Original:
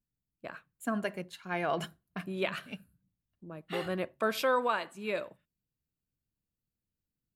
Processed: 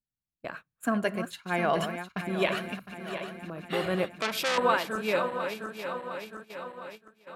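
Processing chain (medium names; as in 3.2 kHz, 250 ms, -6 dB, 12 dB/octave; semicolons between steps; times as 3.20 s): backward echo that repeats 354 ms, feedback 75%, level -9 dB; gate -49 dBFS, range -13 dB; 4.12–4.58 s: transformer saturation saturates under 3.9 kHz; trim +5 dB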